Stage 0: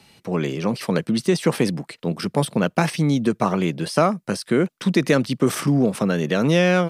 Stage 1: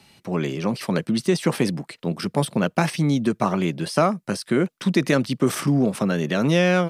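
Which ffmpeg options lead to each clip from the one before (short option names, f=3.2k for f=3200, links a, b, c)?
-af "bandreject=f=470:w=12,volume=-1dB"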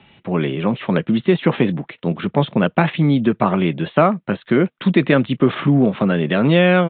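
-af "aresample=8000,aresample=44100,volume=5dB" -ar 32000 -c:a libvorbis -b:a 64k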